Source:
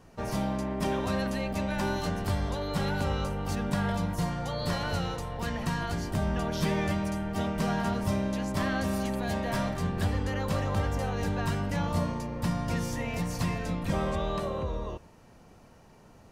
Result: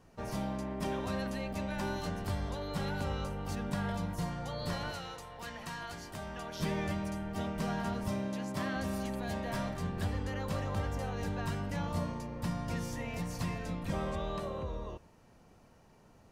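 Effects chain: 4.91–6.6 low shelf 430 Hz -11.5 dB; 8.08–8.76 HPF 100 Hz 24 dB/oct; gain -6 dB

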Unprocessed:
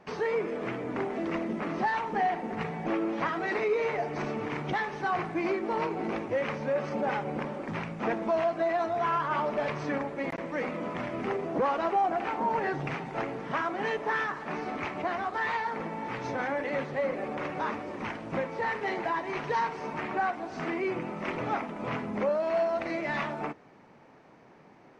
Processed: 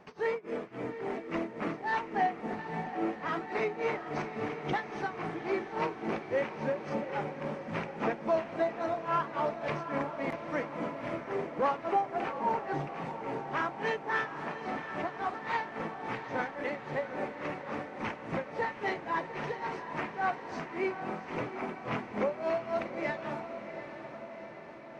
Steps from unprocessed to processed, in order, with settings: tremolo 3.6 Hz, depth 96%; diffused feedback echo 0.763 s, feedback 64%, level -9.5 dB

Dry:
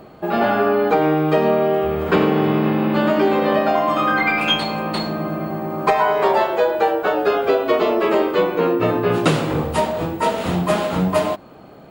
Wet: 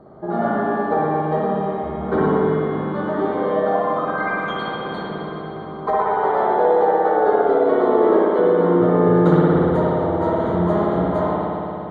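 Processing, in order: running mean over 17 samples; spring tank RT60 3.2 s, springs 57 ms, chirp 75 ms, DRR -6.5 dB; gain -4.5 dB

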